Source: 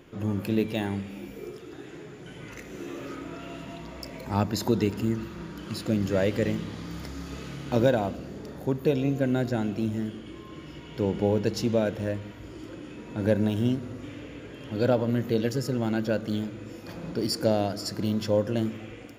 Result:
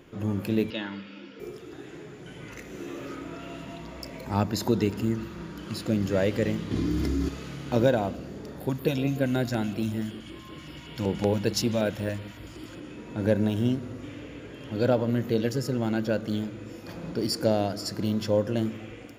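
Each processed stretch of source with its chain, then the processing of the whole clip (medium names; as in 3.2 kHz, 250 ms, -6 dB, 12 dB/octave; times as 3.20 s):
0.70–1.40 s: cabinet simulation 270–5000 Hz, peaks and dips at 420 Hz -3 dB, 710 Hz -10 dB, 1.4 kHz +7 dB, 3 kHz +5 dB, 4.8 kHz +5 dB + comb of notches 390 Hz
6.71–7.29 s: resonant low shelf 460 Hz +8 dB, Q 1.5 + comb 2.9 ms, depth 41% + level flattener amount 70%
8.60–12.80 s: treble shelf 2.9 kHz +8.5 dB + LFO notch square 5.3 Hz 420–6300 Hz
whole clip: none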